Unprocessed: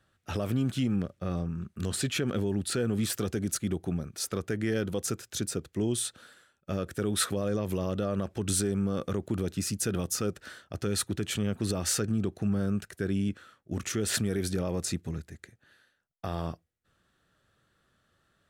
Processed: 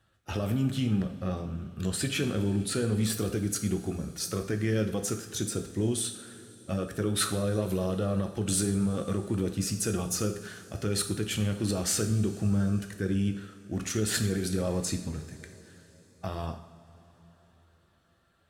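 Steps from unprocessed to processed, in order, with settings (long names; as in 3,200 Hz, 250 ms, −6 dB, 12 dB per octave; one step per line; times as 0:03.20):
spectral magnitudes quantised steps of 15 dB
coupled-rooms reverb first 0.59 s, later 4.7 s, from −18 dB, DRR 5 dB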